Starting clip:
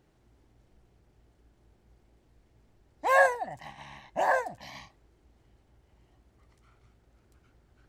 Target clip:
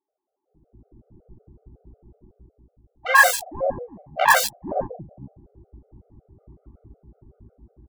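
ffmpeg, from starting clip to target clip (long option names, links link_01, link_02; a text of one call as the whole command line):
ffmpeg -i in.wav -filter_complex "[0:a]asuperstop=centerf=5000:order=4:qfactor=4.2,highshelf=frequency=2400:gain=9,asplit=2[link_01][link_02];[link_02]adelay=47,volume=-9dB[link_03];[link_01][link_03]amix=inputs=2:normalize=0,acrossover=split=620[link_04][link_05];[link_05]acrusher=bits=3:mix=0:aa=0.000001[link_06];[link_04][link_06]amix=inputs=2:normalize=0,equalizer=frequency=1100:width_type=o:width=1.7:gain=3,acrossover=split=560|3000[link_07][link_08][link_09];[link_09]adelay=90[link_10];[link_07]adelay=480[link_11];[link_11][link_08][link_10]amix=inputs=3:normalize=0,dynaudnorm=framelen=110:gausssize=13:maxgain=16dB,afftfilt=real='re*gt(sin(2*PI*5.4*pts/sr)*(1-2*mod(floor(b*sr/1024/390),2)),0)':imag='im*gt(sin(2*PI*5.4*pts/sr)*(1-2*mod(floor(b*sr/1024/390),2)),0)':win_size=1024:overlap=0.75,volume=1.5dB" out.wav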